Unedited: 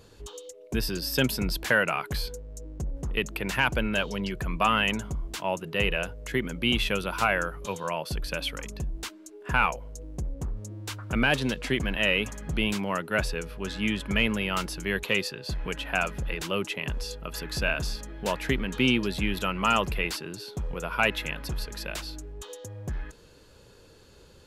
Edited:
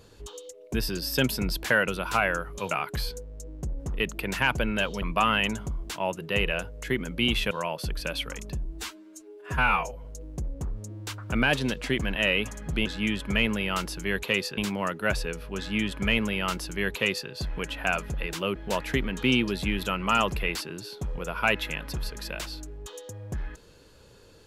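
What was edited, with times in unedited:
4.19–4.46 cut
6.95–7.78 move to 1.88
8.92–9.85 stretch 1.5×
13.66–15.38 copy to 12.66
16.64–18.11 cut

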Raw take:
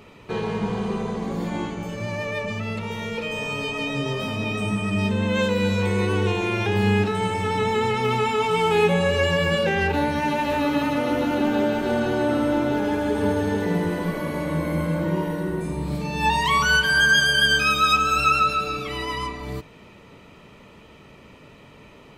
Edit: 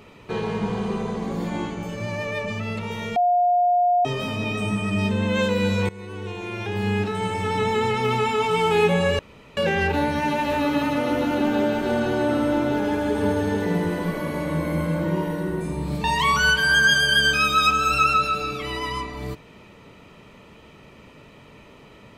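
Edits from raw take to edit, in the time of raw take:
3.16–4.05 bleep 711 Hz -15.5 dBFS
5.89–7.6 fade in, from -19.5 dB
9.19–9.57 room tone
16.04–16.3 cut

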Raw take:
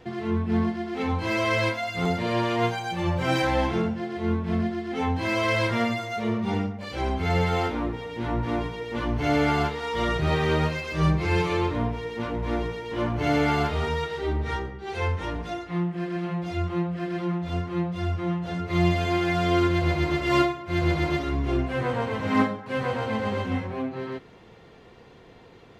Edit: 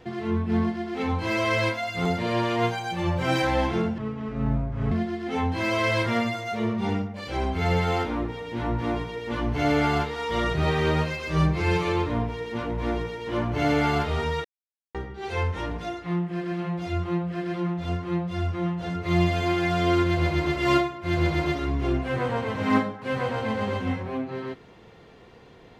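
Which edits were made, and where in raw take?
3.98–4.56 speed 62%
14.09–14.59 mute

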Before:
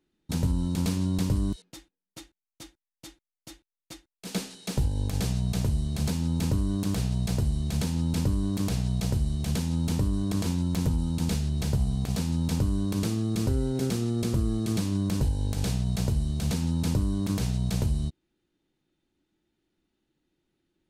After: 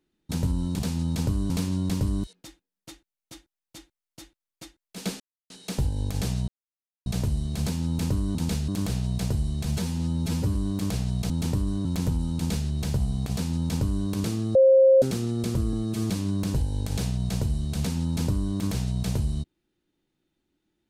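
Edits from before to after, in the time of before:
4.49 insert silence 0.30 s
5.47 insert silence 0.58 s
7.73–8.33 stretch 1.5×
9.08–9.76 cut
10.31–10.64 cut
11.15–11.48 copy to 6.76
12.12–12.83 copy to 0.79
13.34–13.81 bleep 532 Hz -12.5 dBFS
14.52–14.77 stretch 1.5×

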